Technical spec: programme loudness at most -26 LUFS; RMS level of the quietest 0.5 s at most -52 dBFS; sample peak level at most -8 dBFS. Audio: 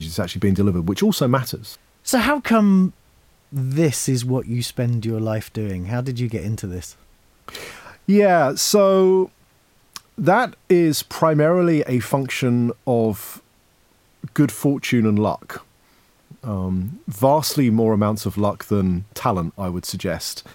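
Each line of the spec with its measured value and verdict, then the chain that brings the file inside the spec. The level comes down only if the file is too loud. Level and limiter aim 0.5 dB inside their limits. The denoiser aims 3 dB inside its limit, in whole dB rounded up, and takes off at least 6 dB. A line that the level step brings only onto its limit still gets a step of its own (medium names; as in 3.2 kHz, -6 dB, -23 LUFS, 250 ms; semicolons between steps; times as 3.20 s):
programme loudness -20.0 LUFS: fail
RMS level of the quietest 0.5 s -58 dBFS: pass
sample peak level -2.5 dBFS: fail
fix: trim -6.5 dB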